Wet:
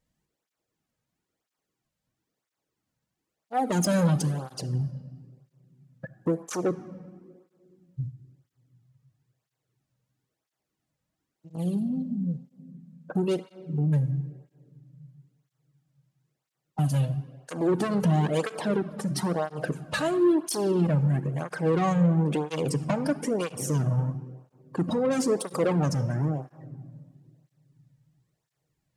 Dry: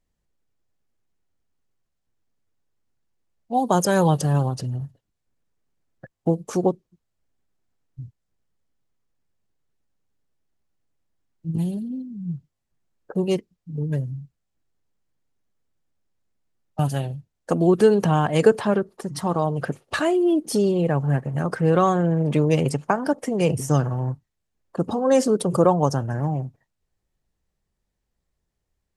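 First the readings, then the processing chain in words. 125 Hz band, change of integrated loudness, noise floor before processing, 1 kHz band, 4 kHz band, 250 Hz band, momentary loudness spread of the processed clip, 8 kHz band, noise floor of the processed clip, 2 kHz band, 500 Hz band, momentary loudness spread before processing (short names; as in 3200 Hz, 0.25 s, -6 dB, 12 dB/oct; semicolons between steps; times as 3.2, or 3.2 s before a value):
-2.5 dB, -5.0 dB, -79 dBFS, -7.5 dB, -3.0 dB, -3.5 dB, 15 LU, -2.5 dB, -85 dBFS, -5.0 dB, -7.0 dB, 15 LU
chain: dynamic EQ 1300 Hz, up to -5 dB, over -36 dBFS, Q 0.94; in parallel at -2.5 dB: compressor, threshold -28 dBFS, peak gain reduction 16.5 dB; on the sum: soft clip -18 dBFS, distortion -10 dB; shoebox room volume 2900 m³, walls mixed, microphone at 0.57 m; tape flanging out of phase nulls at 1 Hz, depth 3 ms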